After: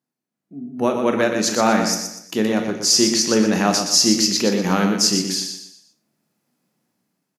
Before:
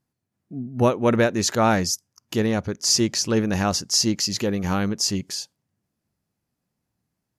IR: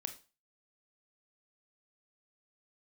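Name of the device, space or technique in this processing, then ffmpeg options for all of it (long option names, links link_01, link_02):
far laptop microphone: -filter_complex "[0:a]aecho=1:1:121|242|363|484:0.447|0.161|0.0579|0.0208[link_01];[1:a]atrim=start_sample=2205[link_02];[link_01][link_02]afir=irnorm=-1:irlink=0,highpass=frequency=170:width=0.5412,highpass=frequency=170:width=1.3066,dynaudnorm=framelen=140:gausssize=13:maxgain=12dB,volume=-1dB"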